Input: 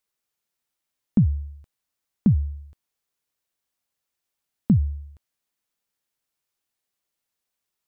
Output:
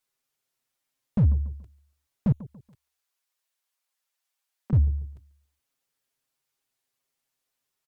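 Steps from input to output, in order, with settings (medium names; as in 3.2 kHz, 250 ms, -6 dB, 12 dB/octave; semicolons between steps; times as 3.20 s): 2.32–4.73 s: high-pass 700 Hz 12 dB/octave; touch-sensitive flanger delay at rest 7.5 ms, full sweep at -20.5 dBFS; Chebyshev shaper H 5 -18 dB, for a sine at -9.5 dBFS; feedback delay 142 ms, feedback 37%, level -22.5 dB; slew-rate limiter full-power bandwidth 22 Hz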